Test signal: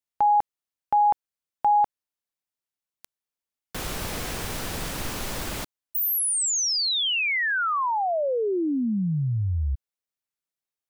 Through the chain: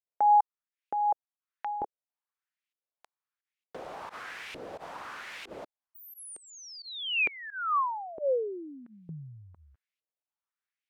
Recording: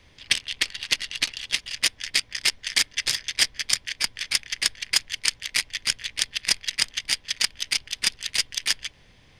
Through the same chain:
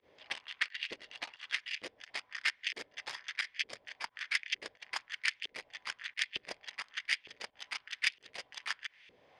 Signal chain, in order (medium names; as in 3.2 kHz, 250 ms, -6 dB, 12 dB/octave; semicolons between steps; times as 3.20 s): volume shaper 88 bpm, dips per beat 1, -23 dB, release 88 ms; LFO band-pass saw up 1.1 Hz 400–2700 Hz; tape noise reduction on one side only encoder only